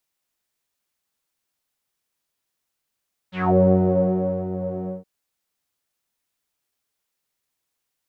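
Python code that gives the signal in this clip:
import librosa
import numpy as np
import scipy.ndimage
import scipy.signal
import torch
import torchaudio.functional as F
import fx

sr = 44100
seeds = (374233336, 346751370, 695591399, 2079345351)

y = fx.sub_patch_pwm(sr, seeds[0], note=54, wave2='saw', interval_st=-12, detune_cents=23, level2_db=-2.0, sub_db=-15.0, noise_db=-30.0, kind='lowpass', cutoff_hz=480.0, q=4.8, env_oct=3.0, env_decay_s=0.2, env_sustain_pct=5, attack_ms=198.0, decay_s=0.98, sustain_db=-12.5, release_s=0.16, note_s=1.56, lfo_hz=1.5, width_pct=49, width_swing_pct=16)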